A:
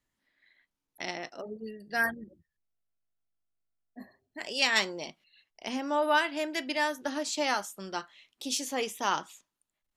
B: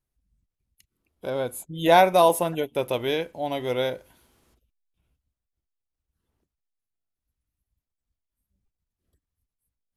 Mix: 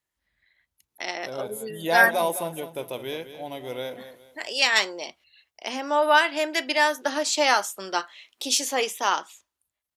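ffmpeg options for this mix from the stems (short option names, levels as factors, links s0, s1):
-filter_complex "[0:a]highpass=390,dynaudnorm=f=180:g=13:m=3.98,volume=0.841[s0];[1:a]highpass=57,highshelf=f=6000:g=8,bandreject=f=60:t=h:w=6,bandreject=f=120:t=h:w=6,bandreject=f=180:t=h:w=6,volume=0.422,asplit=2[s1][s2];[s2]volume=0.266,aecho=0:1:208|416|624|832:1|0.31|0.0961|0.0298[s3];[s0][s1][s3]amix=inputs=3:normalize=0"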